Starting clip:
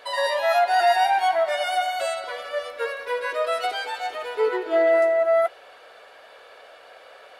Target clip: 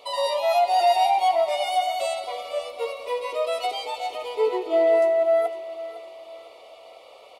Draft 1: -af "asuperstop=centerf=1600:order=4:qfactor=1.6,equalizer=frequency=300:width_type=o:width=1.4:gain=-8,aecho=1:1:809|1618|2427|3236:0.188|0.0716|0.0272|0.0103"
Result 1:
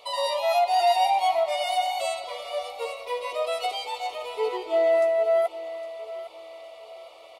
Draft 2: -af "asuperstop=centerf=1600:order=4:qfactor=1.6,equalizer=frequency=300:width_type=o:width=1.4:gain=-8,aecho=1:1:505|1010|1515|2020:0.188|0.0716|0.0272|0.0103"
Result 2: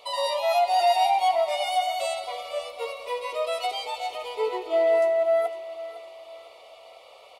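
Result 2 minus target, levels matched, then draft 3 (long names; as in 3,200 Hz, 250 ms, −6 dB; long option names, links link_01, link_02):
250 Hz band −5.5 dB
-af "asuperstop=centerf=1600:order=4:qfactor=1.6,aecho=1:1:505|1010|1515|2020:0.188|0.0716|0.0272|0.0103"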